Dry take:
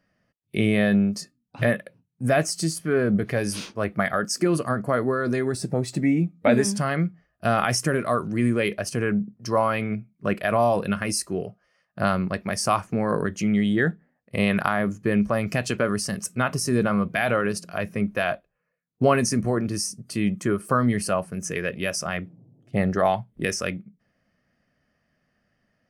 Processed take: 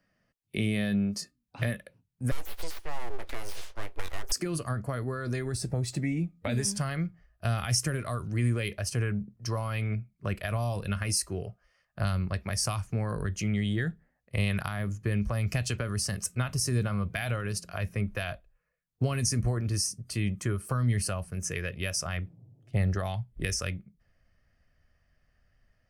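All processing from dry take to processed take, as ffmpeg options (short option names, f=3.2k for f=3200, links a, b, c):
-filter_complex "[0:a]asettb=1/sr,asplit=3[a][b][c];[a]atrim=end=2.314[d];[b]atrim=start=2.31:end=4.32,asetpts=PTS-STARTPTS,afade=t=in:d=0.004:c=qsin,afade=t=out:st=2.006:d=0.004:c=qsin,aeval=exprs='abs(val(0))':c=same,bass=f=250:g=-12,treble=f=4k:g=-2,acrossover=split=730|6400[e][f][g];[e]acompressor=threshold=-35dB:ratio=4[h];[f]acompressor=threshold=-40dB:ratio=4[i];[g]acompressor=threshold=-46dB:ratio=4[j];[h][i][j]amix=inputs=3:normalize=0[k];[c]atrim=start=4.316[l];[d][k]acrossfade=d=0.004:c1=hsin:c2=qsin[m];[m][l]acrossfade=d=0.004:c1=qsin:c2=hsin,asubboost=boost=11:cutoff=61,acrossover=split=240|3000[n][o][p];[o]acompressor=threshold=-31dB:ratio=6[q];[n][q][p]amix=inputs=3:normalize=0,equalizer=f=380:w=0.3:g=-2.5,volume=-1.5dB"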